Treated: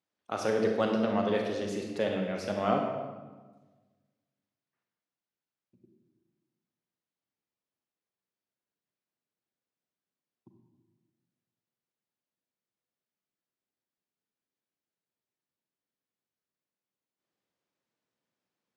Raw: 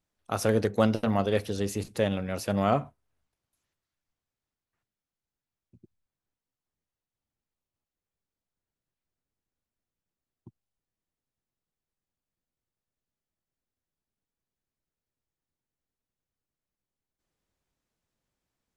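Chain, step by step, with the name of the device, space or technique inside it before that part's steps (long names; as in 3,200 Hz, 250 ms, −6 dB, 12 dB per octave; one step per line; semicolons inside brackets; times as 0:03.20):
supermarket ceiling speaker (band-pass filter 200–5,500 Hz; convolution reverb RT60 1.3 s, pre-delay 29 ms, DRR 2 dB)
level −3.5 dB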